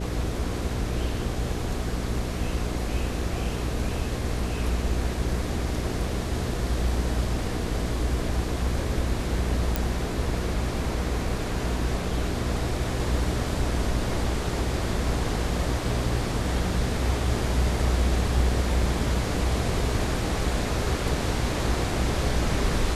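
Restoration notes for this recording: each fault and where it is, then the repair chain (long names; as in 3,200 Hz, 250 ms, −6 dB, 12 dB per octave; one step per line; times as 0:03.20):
mains hum 60 Hz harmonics 8 −31 dBFS
0:09.76: click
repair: click removal
hum removal 60 Hz, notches 8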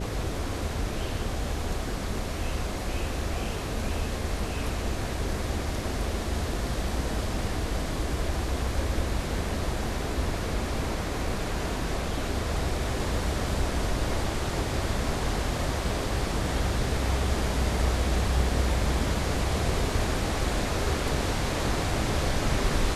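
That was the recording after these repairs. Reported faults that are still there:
none of them is left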